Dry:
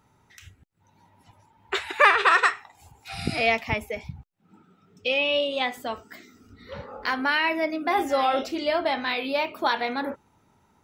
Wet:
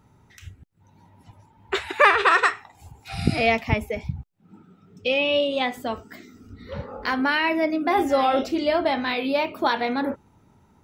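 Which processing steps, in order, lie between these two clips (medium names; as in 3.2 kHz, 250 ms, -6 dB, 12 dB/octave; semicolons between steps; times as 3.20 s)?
bass shelf 420 Hz +9 dB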